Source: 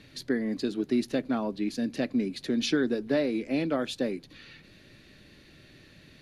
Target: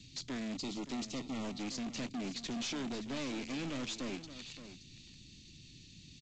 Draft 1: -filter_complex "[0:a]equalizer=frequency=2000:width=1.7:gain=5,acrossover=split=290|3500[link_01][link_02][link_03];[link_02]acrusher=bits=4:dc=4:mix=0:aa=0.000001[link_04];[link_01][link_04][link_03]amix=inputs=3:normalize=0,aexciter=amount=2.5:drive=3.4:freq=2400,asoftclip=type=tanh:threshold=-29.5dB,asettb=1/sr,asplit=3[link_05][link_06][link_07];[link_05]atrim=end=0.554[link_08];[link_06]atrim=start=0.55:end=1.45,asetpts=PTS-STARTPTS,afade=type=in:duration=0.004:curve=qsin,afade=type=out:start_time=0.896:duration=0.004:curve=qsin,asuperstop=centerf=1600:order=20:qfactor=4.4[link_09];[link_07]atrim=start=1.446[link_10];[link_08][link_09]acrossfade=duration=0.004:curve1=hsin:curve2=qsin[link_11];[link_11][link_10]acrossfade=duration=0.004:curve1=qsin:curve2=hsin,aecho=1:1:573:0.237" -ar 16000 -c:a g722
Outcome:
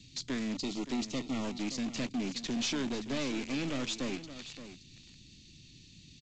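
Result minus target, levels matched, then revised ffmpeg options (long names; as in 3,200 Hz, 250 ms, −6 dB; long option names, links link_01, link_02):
soft clipping: distortion −4 dB
-filter_complex "[0:a]equalizer=frequency=2000:width=1.7:gain=5,acrossover=split=290|3500[link_01][link_02][link_03];[link_02]acrusher=bits=4:dc=4:mix=0:aa=0.000001[link_04];[link_01][link_04][link_03]amix=inputs=3:normalize=0,aexciter=amount=2.5:drive=3.4:freq=2400,asoftclip=type=tanh:threshold=-36.5dB,asettb=1/sr,asplit=3[link_05][link_06][link_07];[link_05]atrim=end=0.554[link_08];[link_06]atrim=start=0.55:end=1.45,asetpts=PTS-STARTPTS,afade=type=in:duration=0.004:curve=qsin,afade=type=out:start_time=0.896:duration=0.004:curve=qsin,asuperstop=centerf=1600:order=20:qfactor=4.4[link_09];[link_07]atrim=start=1.446[link_10];[link_08][link_09]acrossfade=duration=0.004:curve1=hsin:curve2=qsin[link_11];[link_11][link_10]acrossfade=duration=0.004:curve1=qsin:curve2=hsin,aecho=1:1:573:0.237" -ar 16000 -c:a g722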